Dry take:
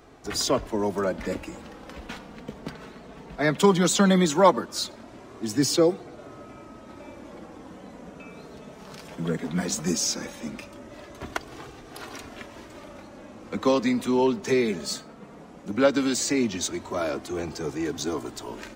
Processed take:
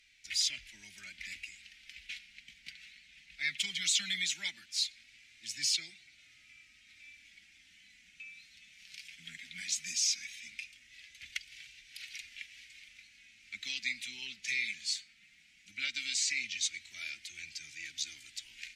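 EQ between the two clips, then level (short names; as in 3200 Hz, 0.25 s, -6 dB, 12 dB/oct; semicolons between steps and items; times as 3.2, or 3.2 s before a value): elliptic high-pass 2200 Hz, stop band 50 dB; brick-wall FIR low-pass 14000 Hz; tilt -4.5 dB/oct; +8.0 dB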